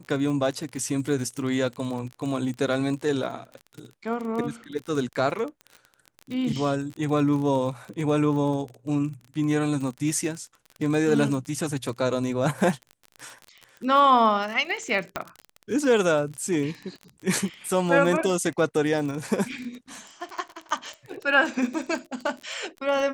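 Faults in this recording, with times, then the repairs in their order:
surface crackle 31 per second −31 dBFS
0:15.16: click −12 dBFS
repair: click removal

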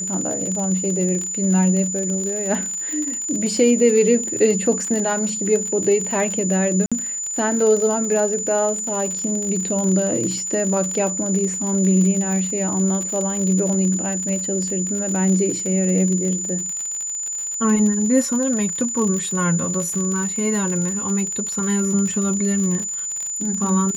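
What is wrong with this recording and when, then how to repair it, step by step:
surface crackle 58 per second −24 dBFS
whistle 7,000 Hz −24 dBFS
0:06.86–0:06.92: drop-out 56 ms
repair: click removal
notch filter 7,000 Hz, Q 30
repair the gap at 0:06.86, 56 ms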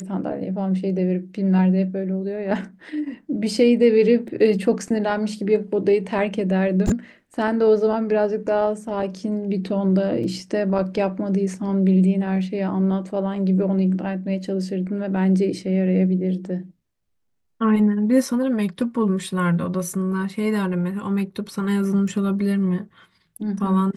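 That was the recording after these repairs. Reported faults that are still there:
none of them is left

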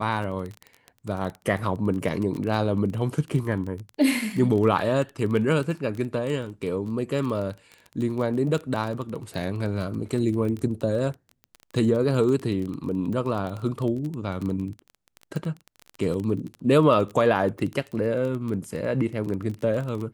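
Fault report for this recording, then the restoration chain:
surface crackle 20 per second −29 dBFS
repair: click removal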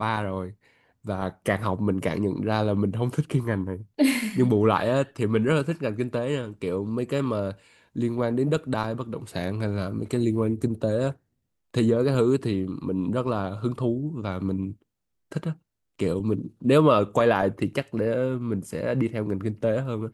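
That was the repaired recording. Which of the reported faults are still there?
none of them is left

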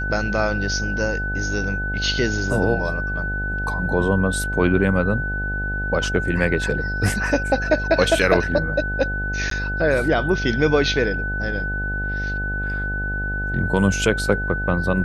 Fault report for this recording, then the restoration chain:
mains buzz 50 Hz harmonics 17 −27 dBFS
whistle 1,500 Hz −25 dBFS
0:09.50–0:09.51: drop-out 13 ms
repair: hum removal 50 Hz, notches 17
notch filter 1,500 Hz, Q 30
repair the gap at 0:09.50, 13 ms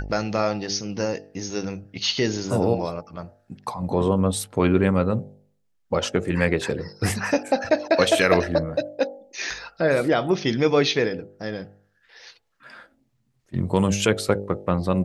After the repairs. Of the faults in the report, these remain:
none of them is left

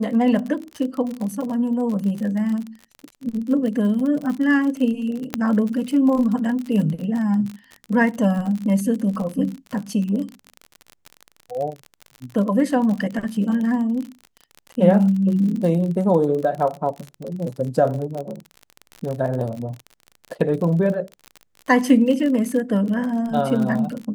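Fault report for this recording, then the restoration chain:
surface crackle 45 per second −27 dBFS
0:05.34: click −6 dBFS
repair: click removal

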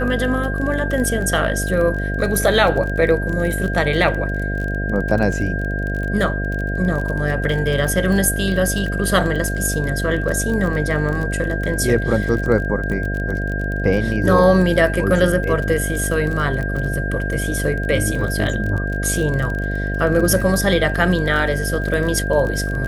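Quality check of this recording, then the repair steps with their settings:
mains buzz 50 Hz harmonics 14 −23 dBFS
surface crackle 29 per second −24 dBFS
whistle 1,600 Hz −26 dBFS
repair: click removal
notch filter 1,600 Hz, Q 30
hum removal 50 Hz, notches 14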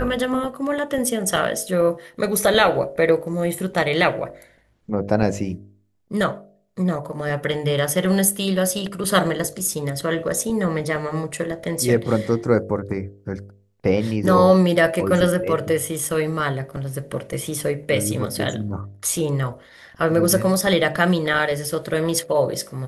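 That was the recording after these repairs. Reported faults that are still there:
none of them is left

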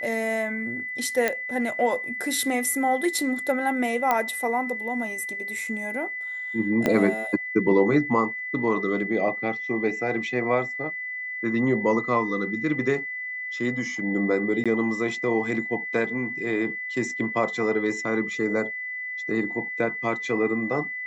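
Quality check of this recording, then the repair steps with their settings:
whistle 2,000 Hz −30 dBFS
0:01.28: click −9 dBFS
0:04.11: click −9 dBFS
0:06.86: click −9 dBFS
0:14.64–0:14.66: drop-out 16 ms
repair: click removal
notch filter 2,000 Hz, Q 30
repair the gap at 0:14.64, 16 ms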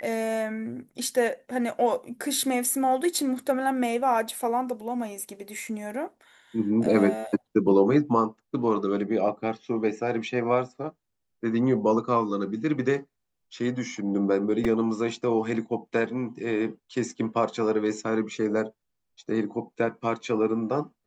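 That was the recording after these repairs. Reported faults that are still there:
0:06.86: click

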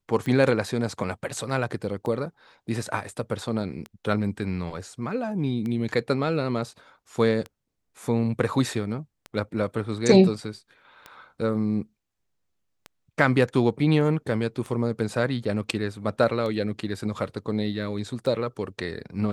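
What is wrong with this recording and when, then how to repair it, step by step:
scratch tick 33 1/3 rpm −21 dBFS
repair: click removal

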